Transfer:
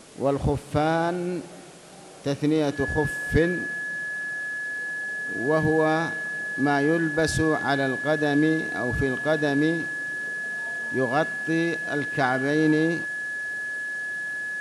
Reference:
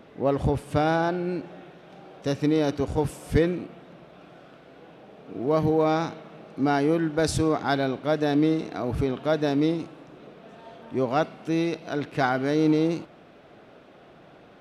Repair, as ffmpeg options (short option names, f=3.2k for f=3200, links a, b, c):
-af "bandreject=f=1.7k:w=30,afwtdn=0.0035"